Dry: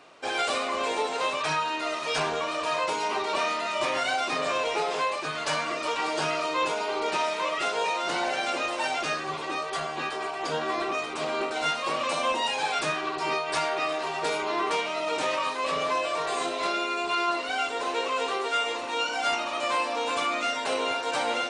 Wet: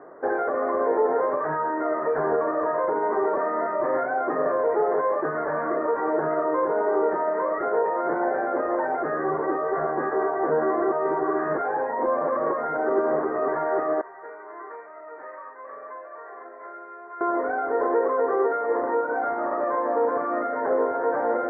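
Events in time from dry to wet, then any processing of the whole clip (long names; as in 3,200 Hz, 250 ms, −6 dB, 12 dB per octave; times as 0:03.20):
0:10.92–0:13.48: reverse
0:14.01–0:17.21: first difference
whole clip: brickwall limiter −23 dBFS; Butterworth low-pass 1,900 Hz 96 dB per octave; parametric band 420 Hz +11.5 dB 1.4 octaves; level +2.5 dB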